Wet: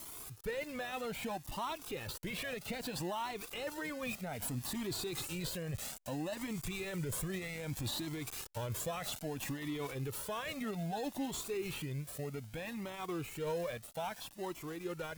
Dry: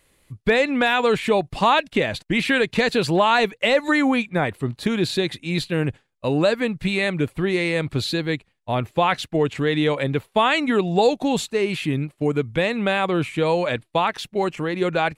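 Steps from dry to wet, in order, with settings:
spike at every zero crossing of −23 dBFS
source passing by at 0:06.45, 9 m/s, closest 1.8 metres
dynamic equaliser 7,600 Hz, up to +5 dB, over −60 dBFS
reversed playback
downward compressor 6 to 1, threshold −42 dBFS, peak gain reduction 23.5 dB
reversed playback
brickwall limiter −44 dBFS, peak gain reduction 13 dB
in parallel at −9 dB: decimation without filtering 19×
on the sum: flanger whose copies keep moving one way rising 0.62 Hz
level +16.5 dB

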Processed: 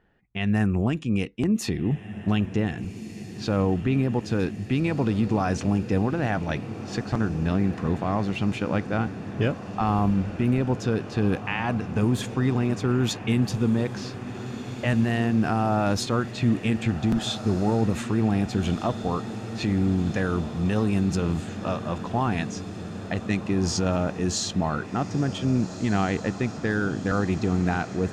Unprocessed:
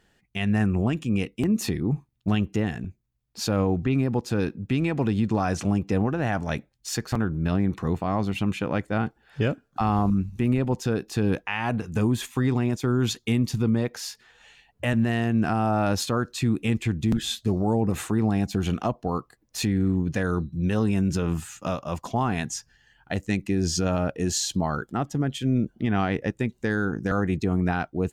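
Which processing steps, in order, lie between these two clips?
low-pass that shuts in the quiet parts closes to 1,800 Hz, open at −18.5 dBFS
feedback delay with all-pass diffusion 1,612 ms, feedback 75%, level −13 dB

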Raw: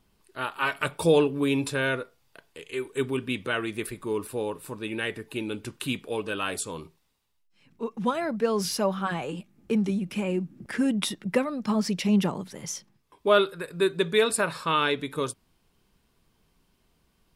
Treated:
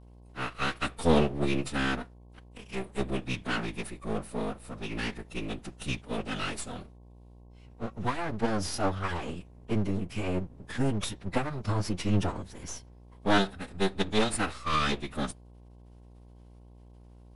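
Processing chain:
half-wave rectification
phase-vocoder pitch shift with formants kept −12 semitones
hum with harmonics 60 Hz, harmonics 18, −52 dBFS −7 dB per octave

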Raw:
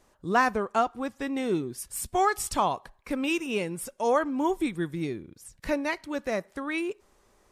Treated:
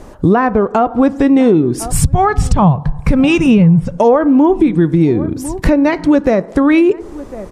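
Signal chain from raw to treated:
0:01.92–0:03.98: low shelf with overshoot 220 Hz +12 dB, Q 3
treble cut that deepens with the level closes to 2,600 Hz, closed at −20 dBFS
tilt shelving filter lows +7 dB, about 940 Hz
slap from a distant wall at 180 metres, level −26 dB
feedback delay network reverb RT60 0.65 s, low-frequency decay 0.95×, high-frequency decay 0.3×, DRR 18 dB
downward compressor 6 to 1, threshold −32 dBFS, peak gain reduction 17 dB
boost into a limiter +25.5 dB
level −1 dB

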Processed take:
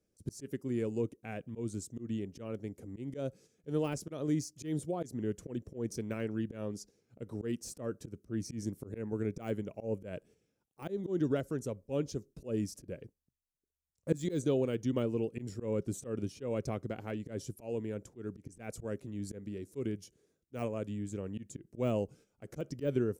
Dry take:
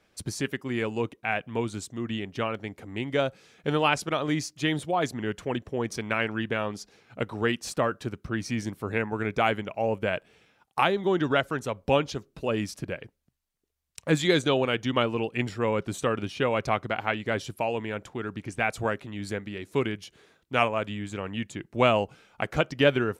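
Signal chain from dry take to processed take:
noise gate −49 dBFS, range −7 dB
de-essing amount 75%
flat-topped bell 1,700 Hz −15.5 dB 2.9 octaves
volume swells 122 ms
level −3.5 dB

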